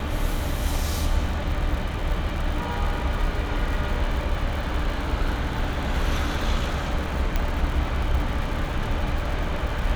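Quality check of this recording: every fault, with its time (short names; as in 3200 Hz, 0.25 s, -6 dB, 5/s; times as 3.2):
crackle 150/s -31 dBFS
7.36 pop -11 dBFS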